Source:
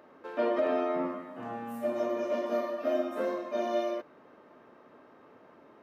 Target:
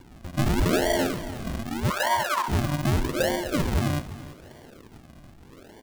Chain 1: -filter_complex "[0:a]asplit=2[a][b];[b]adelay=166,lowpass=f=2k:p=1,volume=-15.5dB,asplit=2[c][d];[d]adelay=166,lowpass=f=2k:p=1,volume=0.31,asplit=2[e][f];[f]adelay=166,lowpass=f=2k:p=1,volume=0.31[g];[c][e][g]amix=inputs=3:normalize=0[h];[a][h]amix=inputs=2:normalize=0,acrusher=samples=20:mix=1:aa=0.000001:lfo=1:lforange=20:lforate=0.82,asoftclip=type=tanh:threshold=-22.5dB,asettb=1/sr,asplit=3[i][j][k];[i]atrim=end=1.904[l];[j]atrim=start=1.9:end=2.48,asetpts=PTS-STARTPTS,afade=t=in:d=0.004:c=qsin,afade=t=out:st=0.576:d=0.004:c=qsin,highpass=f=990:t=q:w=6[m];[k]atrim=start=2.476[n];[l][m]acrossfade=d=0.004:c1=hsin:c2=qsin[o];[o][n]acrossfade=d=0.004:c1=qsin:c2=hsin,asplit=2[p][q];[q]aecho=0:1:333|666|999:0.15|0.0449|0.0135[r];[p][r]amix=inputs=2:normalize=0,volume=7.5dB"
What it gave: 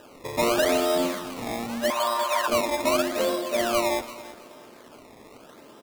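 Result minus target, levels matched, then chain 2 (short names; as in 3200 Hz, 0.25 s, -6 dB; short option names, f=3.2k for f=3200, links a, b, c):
decimation with a swept rate: distortion -22 dB
-filter_complex "[0:a]asplit=2[a][b];[b]adelay=166,lowpass=f=2k:p=1,volume=-15.5dB,asplit=2[c][d];[d]adelay=166,lowpass=f=2k:p=1,volume=0.31,asplit=2[e][f];[f]adelay=166,lowpass=f=2k:p=1,volume=0.31[g];[c][e][g]amix=inputs=3:normalize=0[h];[a][h]amix=inputs=2:normalize=0,acrusher=samples=67:mix=1:aa=0.000001:lfo=1:lforange=67:lforate=0.82,asoftclip=type=tanh:threshold=-22.5dB,asettb=1/sr,asplit=3[i][j][k];[i]atrim=end=1.904[l];[j]atrim=start=1.9:end=2.48,asetpts=PTS-STARTPTS,afade=t=in:d=0.004:c=qsin,afade=t=out:st=0.576:d=0.004:c=qsin,highpass=f=990:t=q:w=6[m];[k]atrim=start=2.476[n];[l][m]acrossfade=d=0.004:c1=hsin:c2=qsin[o];[o][n]acrossfade=d=0.004:c1=qsin:c2=hsin,asplit=2[p][q];[q]aecho=0:1:333|666|999:0.15|0.0449|0.0135[r];[p][r]amix=inputs=2:normalize=0,volume=7.5dB"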